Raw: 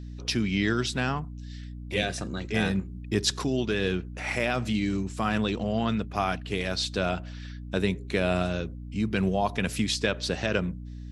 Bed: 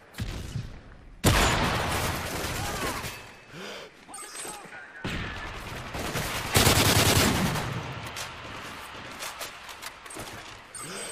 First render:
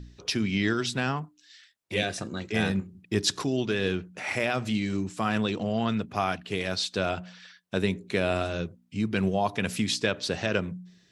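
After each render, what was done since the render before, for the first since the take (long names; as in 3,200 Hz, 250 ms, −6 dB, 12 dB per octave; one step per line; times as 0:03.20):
hum removal 60 Hz, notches 5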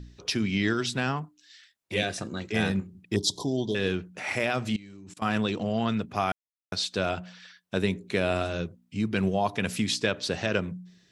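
0:03.16–0:03.75: Chebyshev band-stop filter 1,000–3,200 Hz, order 5
0:04.76–0:05.22: output level in coarse steps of 23 dB
0:06.32–0:06.72: silence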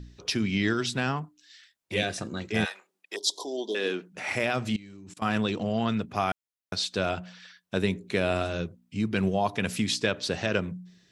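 0:02.64–0:04.12: high-pass filter 800 Hz → 210 Hz 24 dB per octave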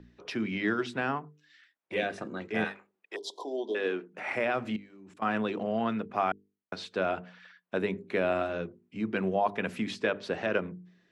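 three-way crossover with the lows and the highs turned down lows −14 dB, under 200 Hz, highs −18 dB, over 2,500 Hz
mains-hum notches 50/100/150/200/250/300/350/400/450 Hz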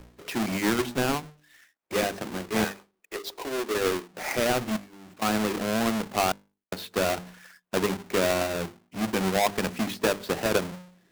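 each half-wave held at its own peak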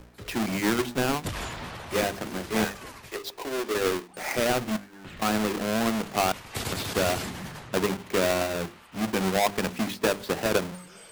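mix in bed −12 dB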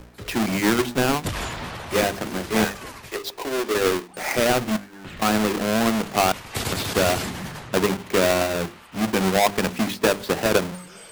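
level +5 dB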